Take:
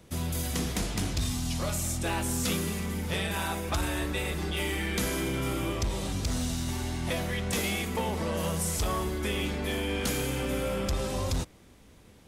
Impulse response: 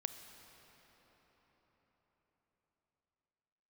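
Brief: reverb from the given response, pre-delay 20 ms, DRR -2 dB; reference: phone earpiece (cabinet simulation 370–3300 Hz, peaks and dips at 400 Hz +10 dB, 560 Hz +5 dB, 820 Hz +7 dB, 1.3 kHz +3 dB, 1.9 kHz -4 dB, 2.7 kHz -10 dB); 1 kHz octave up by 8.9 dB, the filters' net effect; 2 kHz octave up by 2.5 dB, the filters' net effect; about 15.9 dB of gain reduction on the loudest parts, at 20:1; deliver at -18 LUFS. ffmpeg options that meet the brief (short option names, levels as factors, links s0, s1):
-filter_complex "[0:a]equalizer=f=1000:t=o:g=4,equalizer=f=2000:t=o:g=6.5,acompressor=threshold=0.01:ratio=20,asplit=2[s0][s1];[1:a]atrim=start_sample=2205,adelay=20[s2];[s1][s2]afir=irnorm=-1:irlink=0,volume=1.41[s3];[s0][s3]amix=inputs=2:normalize=0,highpass=370,equalizer=f=400:t=q:w=4:g=10,equalizer=f=560:t=q:w=4:g=5,equalizer=f=820:t=q:w=4:g=7,equalizer=f=1300:t=q:w=4:g=3,equalizer=f=1900:t=q:w=4:g=-4,equalizer=f=2700:t=q:w=4:g=-10,lowpass=f=3300:w=0.5412,lowpass=f=3300:w=1.3066,volume=11.9"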